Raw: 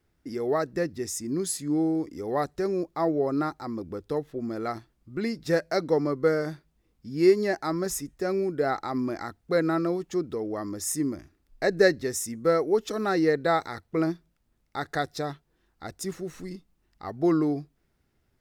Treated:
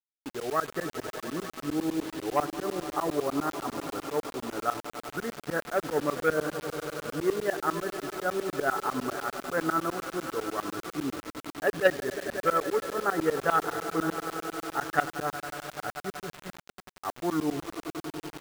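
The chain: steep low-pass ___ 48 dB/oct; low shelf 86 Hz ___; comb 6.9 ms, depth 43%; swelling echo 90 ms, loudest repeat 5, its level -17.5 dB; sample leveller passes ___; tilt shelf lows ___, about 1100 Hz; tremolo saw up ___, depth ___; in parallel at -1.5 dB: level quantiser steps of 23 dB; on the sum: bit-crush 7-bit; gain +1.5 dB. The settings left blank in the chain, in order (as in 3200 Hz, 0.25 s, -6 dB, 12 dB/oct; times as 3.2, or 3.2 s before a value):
1600 Hz, -7 dB, 1, -9.5 dB, 10 Hz, 100%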